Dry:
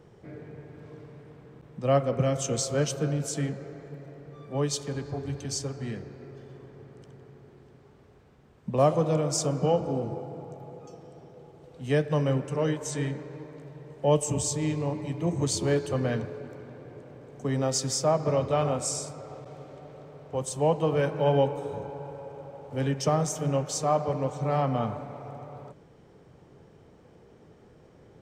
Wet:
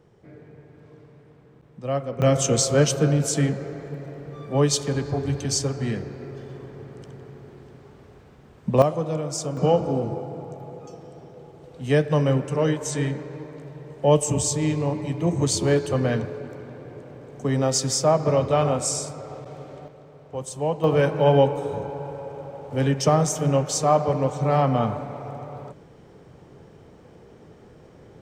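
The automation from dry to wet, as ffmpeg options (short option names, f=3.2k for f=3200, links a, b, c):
-af "asetnsamples=n=441:p=0,asendcmd='2.22 volume volume 8dB;8.82 volume volume -1.5dB;9.57 volume volume 5dB;19.88 volume volume -1dB;20.84 volume volume 6dB',volume=-3dB"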